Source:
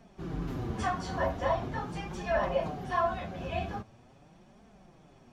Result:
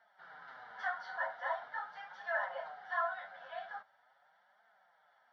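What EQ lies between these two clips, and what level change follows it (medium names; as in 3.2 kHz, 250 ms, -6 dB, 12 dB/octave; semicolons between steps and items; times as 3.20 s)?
ladder band-pass 1.4 kHz, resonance 55%; static phaser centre 1.7 kHz, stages 8; +10.5 dB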